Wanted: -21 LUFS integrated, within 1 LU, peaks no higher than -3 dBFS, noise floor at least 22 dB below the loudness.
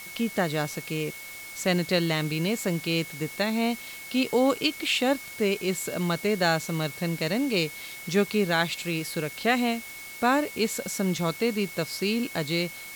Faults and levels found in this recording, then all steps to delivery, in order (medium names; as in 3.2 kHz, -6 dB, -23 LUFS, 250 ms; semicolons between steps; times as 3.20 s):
steady tone 2.2 kHz; tone level -41 dBFS; noise floor -41 dBFS; noise floor target -49 dBFS; loudness -27.0 LUFS; peak level -10.0 dBFS; loudness target -21.0 LUFS
-> band-stop 2.2 kHz, Q 30; noise reduction 8 dB, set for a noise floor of -41 dBFS; trim +6 dB